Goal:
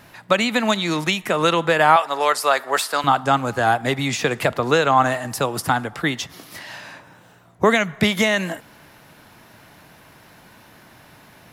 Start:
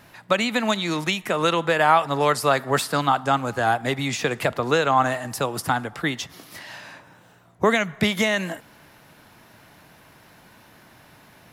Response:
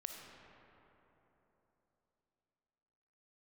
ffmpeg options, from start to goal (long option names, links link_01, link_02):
-filter_complex "[0:a]asettb=1/sr,asplit=3[link_01][link_02][link_03];[link_01]atrim=end=1.964[link_04];[link_02]atrim=start=1.96:end=3.04,asetpts=PTS-STARTPTS,afade=type=in:duration=0.004:curve=qsin,afade=type=out:start_time=1.076:duration=0.004:curve=qsin,highpass=530[link_05];[link_03]atrim=start=3.036[link_06];[link_04][link_05]acrossfade=duration=0.004:curve1=hsin:curve2=qsin[link_07];[link_07][link_06]acrossfade=duration=0.004:curve1=qsin:curve2=hsin,volume=3dB"